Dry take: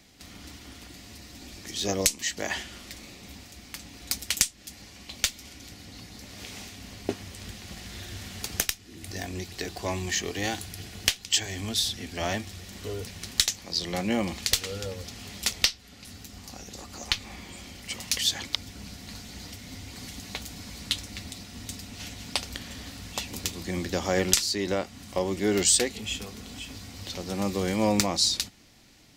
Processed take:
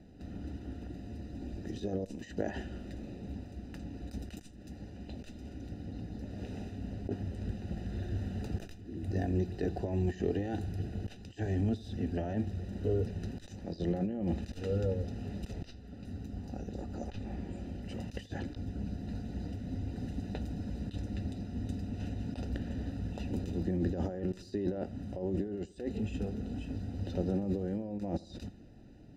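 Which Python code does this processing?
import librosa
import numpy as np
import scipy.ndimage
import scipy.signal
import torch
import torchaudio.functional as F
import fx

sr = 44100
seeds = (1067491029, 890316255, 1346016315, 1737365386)

y = fx.over_compress(x, sr, threshold_db=-33.0, ratio=-1.0)
y = np.convolve(y, np.full(40, 1.0 / 40))[:len(y)]
y = fx.echo_feedback(y, sr, ms=82, feedback_pct=52, wet_db=-21)
y = y * librosa.db_to_amplitude(2.5)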